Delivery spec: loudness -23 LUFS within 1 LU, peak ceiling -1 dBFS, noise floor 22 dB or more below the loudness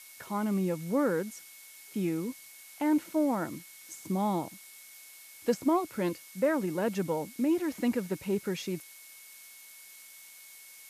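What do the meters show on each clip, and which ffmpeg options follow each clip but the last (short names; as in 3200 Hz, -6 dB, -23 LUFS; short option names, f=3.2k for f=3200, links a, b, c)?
steady tone 2200 Hz; tone level -56 dBFS; noise floor -52 dBFS; noise floor target -54 dBFS; loudness -31.5 LUFS; peak -16.0 dBFS; loudness target -23.0 LUFS
-> -af "bandreject=f=2.2k:w=30"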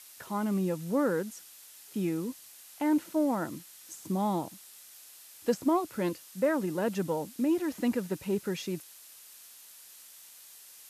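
steady tone none; noise floor -52 dBFS; noise floor target -54 dBFS
-> -af "afftdn=nr=6:nf=-52"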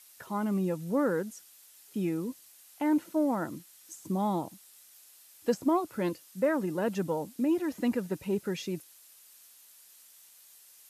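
noise floor -57 dBFS; loudness -31.5 LUFS; peak -16.0 dBFS; loudness target -23.0 LUFS
-> -af "volume=8.5dB"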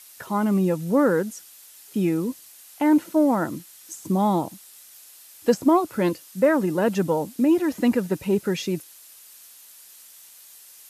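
loudness -23.0 LUFS; peak -7.5 dBFS; noise floor -48 dBFS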